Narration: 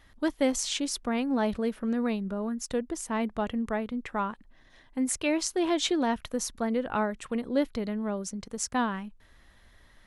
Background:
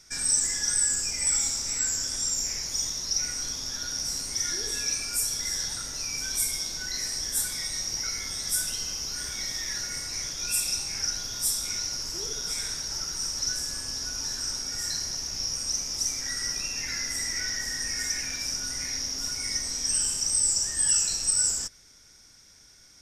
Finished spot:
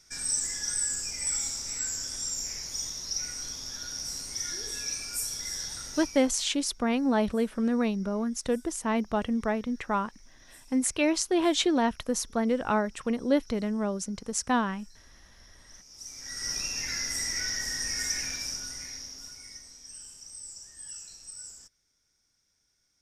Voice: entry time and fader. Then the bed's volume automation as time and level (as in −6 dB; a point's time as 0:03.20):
5.75 s, +2.0 dB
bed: 0:06.00 −5 dB
0:06.43 −28.5 dB
0:15.60 −28.5 dB
0:16.53 −1 dB
0:18.26 −1 dB
0:19.81 −19.5 dB